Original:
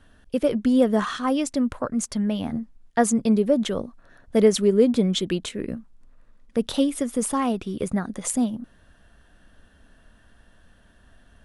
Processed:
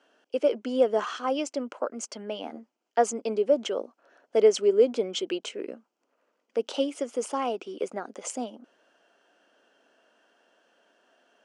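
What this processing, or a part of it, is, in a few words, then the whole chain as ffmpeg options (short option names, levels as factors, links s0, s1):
phone speaker on a table: -af "highpass=f=360:w=0.5412,highpass=f=360:w=1.3066,equalizer=f=1100:t=q:w=4:g=-5,equalizer=f=1800:t=q:w=4:g=-9,equalizer=f=3100:t=q:w=4:g=8,lowpass=f=6700:w=0.5412,lowpass=f=6700:w=1.3066,equalizer=f=3600:t=o:w=0.5:g=-14"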